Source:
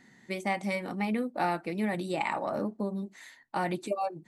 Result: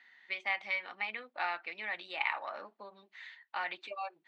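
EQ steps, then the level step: HPF 1300 Hz 12 dB/oct; ladder low-pass 4200 Hz, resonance 30%; air absorption 68 m; +8.0 dB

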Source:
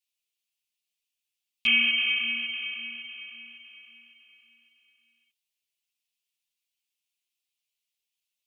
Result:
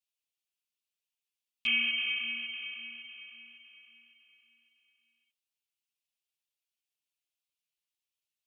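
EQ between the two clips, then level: bell 190 Hz -6.5 dB 0.3 oct; -6.5 dB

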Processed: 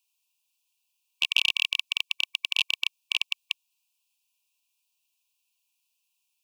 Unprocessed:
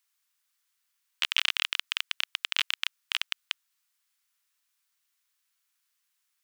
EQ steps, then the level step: HPF 420 Hz; brick-wall FIR band-stop 1100–2300 Hz; bell 2700 Hz +7.5 dB 0.25 oct; 0.0 dB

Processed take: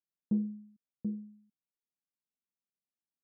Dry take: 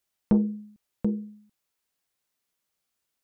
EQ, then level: band-pass 210 Hz, Q 1.7; air absorption 440 m; -8.0 dB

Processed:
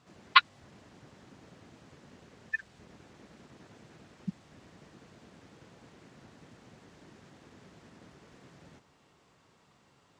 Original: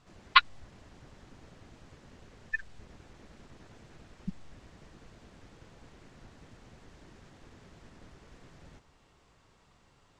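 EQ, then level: HPF 150 Hz 12 dB/oct; low shelf 210 Hz +5 dB; 0.0 dB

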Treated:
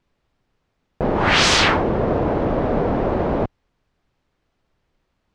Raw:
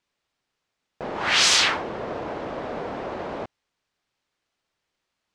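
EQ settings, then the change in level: tilt -3.5 dB/oct; +7.5 dB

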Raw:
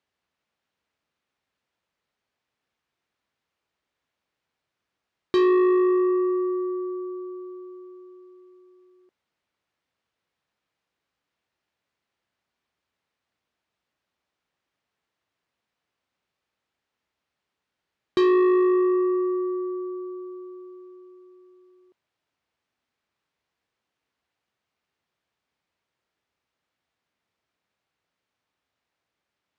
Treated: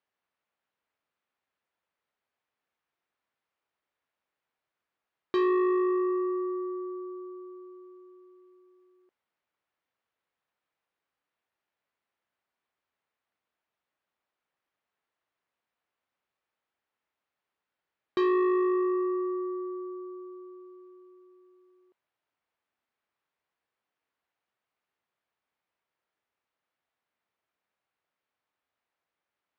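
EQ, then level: LPF 1600 Hz 6 dB/oct; low shelf 390 Hz -11.5 dB; 0.0 dB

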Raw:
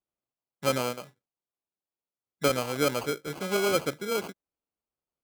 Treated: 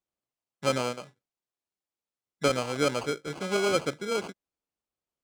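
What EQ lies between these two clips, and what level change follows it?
polynomial smoothing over 9 samples; 0.0 dB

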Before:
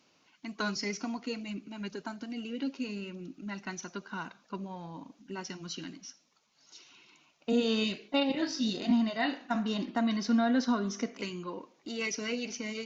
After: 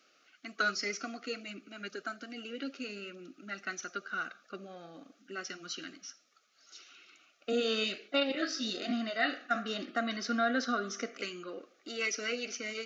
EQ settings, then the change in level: HPF 360 Hz 12 dB/oct; Butterworth band-stop 970 Hz, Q 1.6; bell 1200 Hz +14 dB 0.63 oct; 0.0 dB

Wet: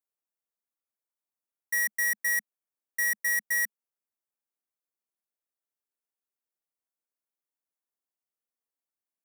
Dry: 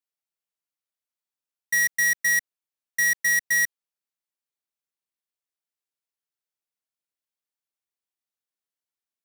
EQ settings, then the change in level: elliptic high-pass 210 Hz; bell 3700 Hz -13.5 dB 1.4 oct; 0.0 dB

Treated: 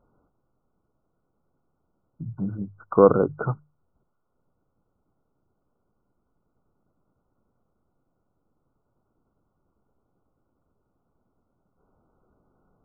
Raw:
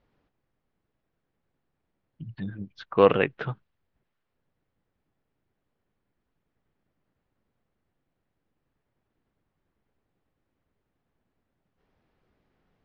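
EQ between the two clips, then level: notches 50/100/150 Hz; dynamic EQ 820 Hz, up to -6 dB, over -30 dBFS, Q 0.87; brick-wall FIR low-pass 1500 Hz; +6.0 dB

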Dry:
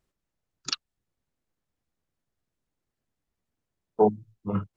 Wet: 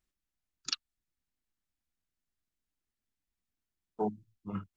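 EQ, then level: graphic EQ 125/500/1000 Hz -10/-11/-4 dB; -4.0 dB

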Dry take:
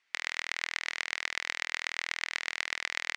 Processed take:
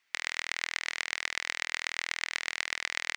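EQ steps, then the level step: low shelf 130 Hz +6 dB; high shelf 9700 Hz +10.5 dB; 0.0 dB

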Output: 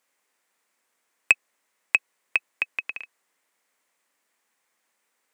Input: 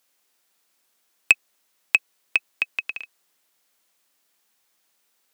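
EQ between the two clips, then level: graphic EQ 125/250/500/1000/2000/8000 Hz +5/+8/+9/+9/+12/+8 dB; -12.0 dB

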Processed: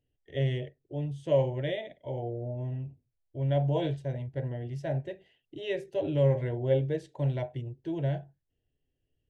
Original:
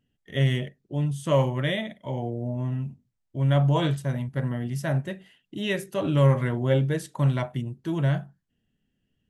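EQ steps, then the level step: tape spacing loss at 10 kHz 24 dB; fixed phaser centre 500 Hz, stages 4; 0.0 dB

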